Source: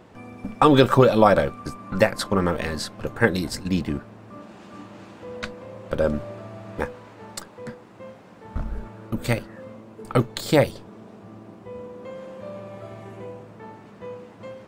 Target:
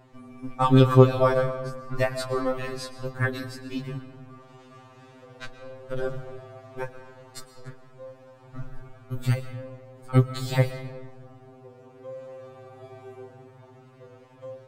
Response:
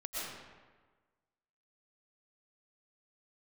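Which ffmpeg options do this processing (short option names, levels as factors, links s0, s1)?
-filter_complex "[0:a]asplit=3[s0][s1][s2];[s0]afade=t=out:st=3.24:d=0.02[s3];[s1]agate=range=0.501:threshold=0.0631:ratio=16:detection=peak,afade=t=in:st=3.24:d=0.02,afade=t=out:st=3.73:d=0.02[s4];[s2]afade=t=in:st=3.73:d=0.02[s5];[s3][s4][s5]amix=inputs=3:normalize=0,lowshelf=f=150:g=7.5,asplit=2[s6][s7];[1:a]atrim=start_sample=2205[s8];[s7][s8]afir=irnorm=-1:irlink=0,volume=0.266[s9];[s6][s9]amix=inputs=2:normalize=0,afftfilt=real='re*2.45*eq(mod(b,6),0)':imag='im*2.45*eq(mod(b,6),0)':win_size=2048:overlap=0.75,volume=0.531"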